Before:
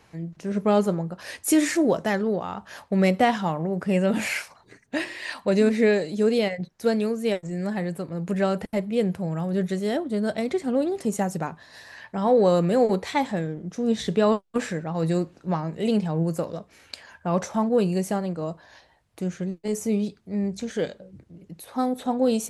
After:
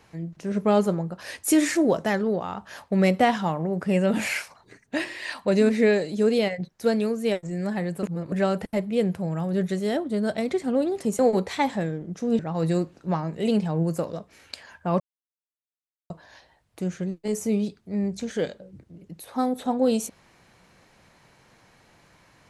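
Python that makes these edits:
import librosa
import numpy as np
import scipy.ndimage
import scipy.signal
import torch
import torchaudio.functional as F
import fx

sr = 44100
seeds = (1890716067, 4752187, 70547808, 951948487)

y = fx.edit(x, sr, fx.reverse_span(start_s=8.03, length_s=0.29),
    fx.cut(start_s=11.19, length_s=1.56),
    fx.cut(start_s=13.95, length_s=0.84),
    fx.silence(start_s=17.4, length_s=1.1), tone=tone)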